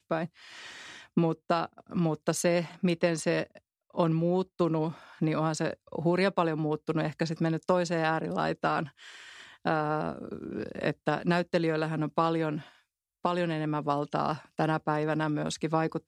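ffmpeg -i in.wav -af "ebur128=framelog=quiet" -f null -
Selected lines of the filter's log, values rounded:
Integrated loudness:
  I:         -29.8 LUFS
  Threshold: -40.2 LUFS
Loudness range:
  LRA:         2.2 LU
  Threshold: -50.1 LUFS
  LRA low:   -31.3 LUFS
  LRA high:  -29.2 LUFS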